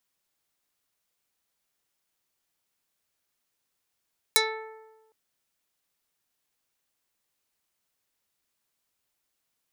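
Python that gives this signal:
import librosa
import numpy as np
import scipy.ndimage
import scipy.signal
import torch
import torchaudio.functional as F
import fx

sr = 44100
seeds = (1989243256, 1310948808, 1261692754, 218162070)

y = fx.pluck(sr, length_s=0.76, note=69, decay_s=1.2, pick=0.28, brightness='dark')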